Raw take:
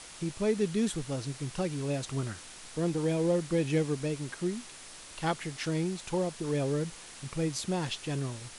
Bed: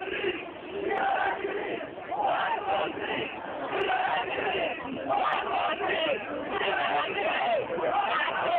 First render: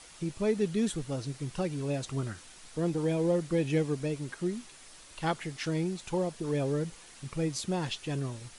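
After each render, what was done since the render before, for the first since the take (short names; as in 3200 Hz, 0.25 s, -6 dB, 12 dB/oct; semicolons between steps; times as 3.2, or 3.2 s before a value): denoiser 6 dB, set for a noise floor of -48 dBFS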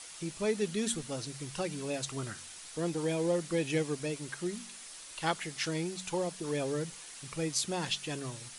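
tilt +2 dB/oct; de-hum 46.46 Hz, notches 5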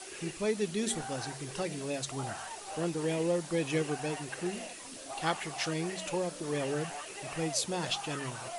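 add bed -15.5 dB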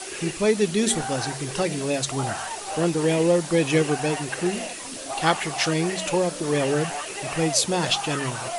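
gain +10.5 dB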